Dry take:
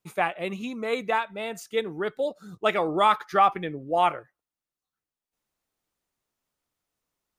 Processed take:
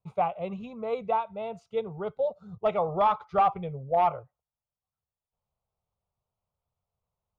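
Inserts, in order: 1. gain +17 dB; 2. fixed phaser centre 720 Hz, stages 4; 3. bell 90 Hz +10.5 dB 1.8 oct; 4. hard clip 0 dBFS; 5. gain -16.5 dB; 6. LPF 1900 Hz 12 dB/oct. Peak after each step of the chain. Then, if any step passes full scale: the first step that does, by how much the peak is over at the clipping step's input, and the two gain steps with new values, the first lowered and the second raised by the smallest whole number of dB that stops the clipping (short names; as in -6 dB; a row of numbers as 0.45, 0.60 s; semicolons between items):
+8.0, +6.0, +6.5, 0.0, -16.5, -16.0 dBFS; step 1, 6.5 dB; step 1 +10 dB, step 5 -9.5 dB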